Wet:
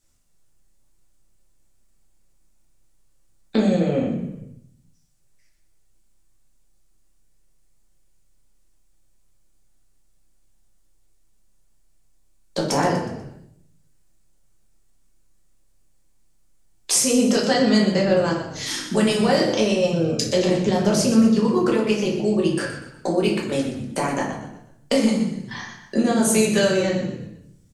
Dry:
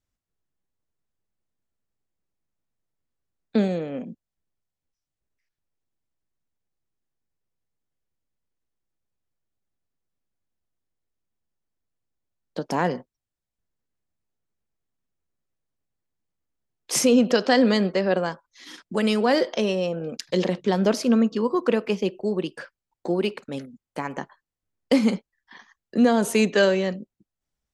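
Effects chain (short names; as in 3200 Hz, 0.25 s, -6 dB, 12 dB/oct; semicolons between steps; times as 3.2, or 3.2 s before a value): bell 8400 Hz +12.5 dB 1.3 oct; compressor 3:1, threshold -34 dBFS, peak gain reduction 17.5 dB; frequency-shifting echo 0.122 s, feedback 40%, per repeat -33 Hz, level -10.5 dB; shoebox room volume 120 m³, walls mixed, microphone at 1.2 m; gain +8 dB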